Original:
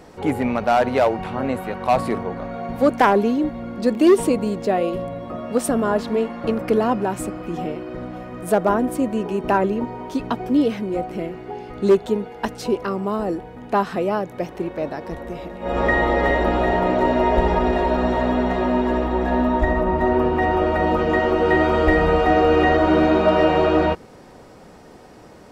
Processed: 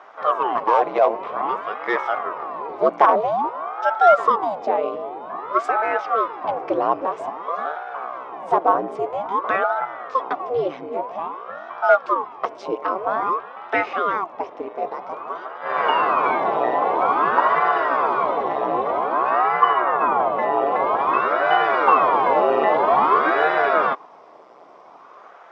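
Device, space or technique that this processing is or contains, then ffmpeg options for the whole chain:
voice changer toy: -filter_complex "[0:a]asettb=1/sr,asplit=3[a][b][c];[a]atrim=end=12.824[d];[b]atrim=start=12.82:end=14.13,asetpts=PTS-STARTPTS,afade=t=in:d=0.004:c=qsin,afade=t=out:st=1.306:d=0.004:c=qsin,equalizer=f=1.8k:t=o:w=2.3:g=5.5[e];[c]atrim=start=14.126[f];[d][e]acrossfade=d=0.004:c1=hsin:c2=qsin[g];[g][f]acrossfade=d=0.004:c1=qsin:c2=hsin,aeval=exprs='val(0)*sin(2*PI*580*n/s+580*0.9/0.51*sin(2*PI*0.51*n/s))':c=same,highpass=410,equalizer=f=420:t=q:w=4:g=3,equalizer=f=700:t=q:w=4:g=6,equalizer=f=1.1k:t=q:w=4:g=9,equalizer=f=1.7k:t=q:w=4:g=-5,equalizer=f=2.8k:t=q:w=4:g=-4,equalizer=f=4.3k:t=q:w=4:g=-9,lowpass=f=4.9k:w=0.5412,lowpass=f=4.9k:w=1.3066"

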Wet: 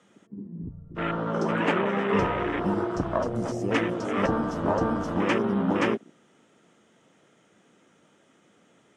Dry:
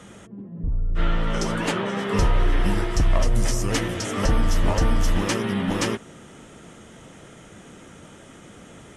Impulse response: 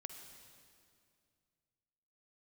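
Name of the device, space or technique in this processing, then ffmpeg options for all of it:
over-cleaned archive recording: -af "highpass=190,lowpass=7.5k,afwtdn=0.0316,volume=2dB"

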